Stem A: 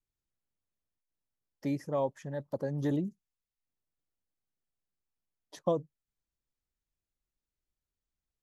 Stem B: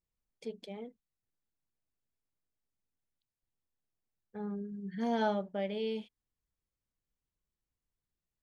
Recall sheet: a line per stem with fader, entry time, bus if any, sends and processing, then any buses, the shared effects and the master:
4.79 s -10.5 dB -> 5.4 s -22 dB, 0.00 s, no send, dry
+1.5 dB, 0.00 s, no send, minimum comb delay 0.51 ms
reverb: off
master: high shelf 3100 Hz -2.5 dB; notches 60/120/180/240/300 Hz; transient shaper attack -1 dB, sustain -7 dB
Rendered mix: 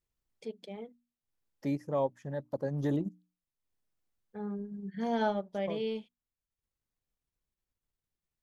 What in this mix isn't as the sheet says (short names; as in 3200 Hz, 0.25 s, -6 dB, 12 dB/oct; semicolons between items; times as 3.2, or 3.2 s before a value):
stem A -10.5 dB -> +1.0 dB; stem B: missing minimum comb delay 0.51 ms